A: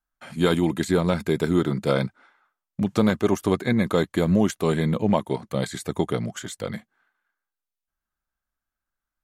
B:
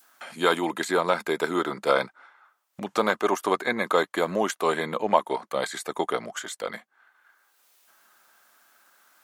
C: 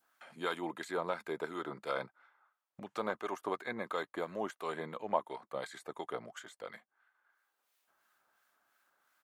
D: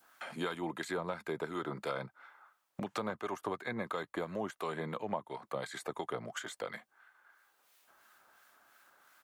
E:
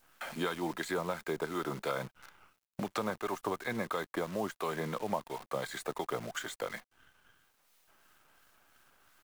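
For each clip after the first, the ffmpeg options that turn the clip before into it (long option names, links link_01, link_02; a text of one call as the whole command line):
ffmpeg -i in.wav -af "adynamicequalizer=threshold=0.0126:dfrequency=1100:dqfactor=0.9:tfrequency=1100:tqfactor=0.9:attack=5:release=100:ratio=0.375:range=3.5:mode=boostabove:tftype=bell,highpass=440,acompressor=mode=upward:threshold=-36dB:ratio=2.5" out.wav
ffmpeg -i in.wav -filter_complex "[0:a]lowshelf=frequency=120:gain=-8.5,acrossover=split=1300[link_01][link_02];[link_01]aeval=exprs='val(0)*(1-0.5/2+0.5/2*cos(2*PI*2.9*n/s))':channel_layout=same[link_03];[link_02]aeval=exprs='val(0)*(1-0.5/2-0.5/2*cos(2*PI*2.9*n/s))':channel_layout=same[link_04];[link_03][link_04]amix=inputs=2:normalize=0,firequalizer=gain_entry='entry(120,0);entry(190,-8);entry(5700,-15)':delay=0.05:min_phase=1,volume=-1.5dB" out.wav
ffmpeg -i in.wav -filter_complex "[0:a]acrossover=split=160[link_01][link_02];[link_02]acompressor=threshold=-47dB:ratio=4[link_03];[link_01][link_03]amix=inputs=2:normalize=0,volume=10.5dB" out.wav
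ffmpeg -i in.wav -af "acrusher=bits=9:dc=4:mix=0:aa=0.000001,volume=2.5dB" out.wav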